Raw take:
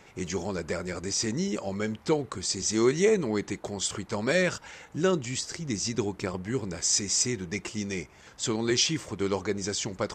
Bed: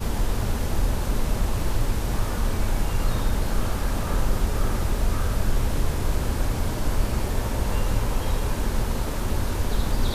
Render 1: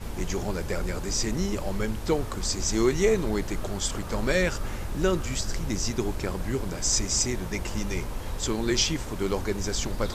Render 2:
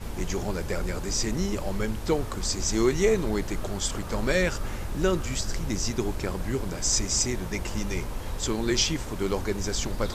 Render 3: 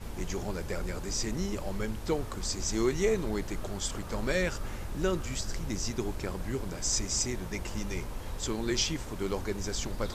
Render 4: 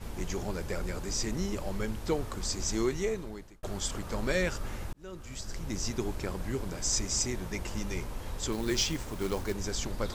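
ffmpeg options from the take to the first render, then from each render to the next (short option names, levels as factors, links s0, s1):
-filter_complex "[1:a]volume=0.355[s0];[0:a][s0]amix=inputs=2:normalize=0"
-af anull
-af "volume=0.562"
-filter_complex "[0:a]asettb=1/sr,asplit=3[s0][s1][s2];[s0]atrim=end=8.524[s3];[s1]atrim=start=8.52:end=9.54,asetpts=PTS-STARTPTS,afade=t=in:d=0.004:c=qsin,afade=t=out:st=1.016:d=0.004:c=qsin,acrusher=bits=4:mode=log:mix=0:aa=0.000001[s4];[s2]atrim=start=9.536[s5];[s3][s4]acrossfade=d=0.004:c1=hsin:c2=qsin[s6];[s6][s5]acrossfade=d=0.004:c1=qsin:c2=hsin,asplit=3[s7][s8][s9];[s7]atrim=end=3.63,asetpts=PTS-STARTPTS,afade=t=out:st=2.7:d=0.93[s10];[s8]atrim=start=3.63:end=4.93,asetpts=PTS-STARTPTS,afade=t=in:d=0.004:c=hsin,afade=t=out:st=1.296:d=0.004:c=hsin[s11];[s9]atrim=start=4.93,asetpts=PTS-STARTPTS,afade=t=in:d=0.92[s12];[s10][s11][s12]concat=n=3:v=0:a=1"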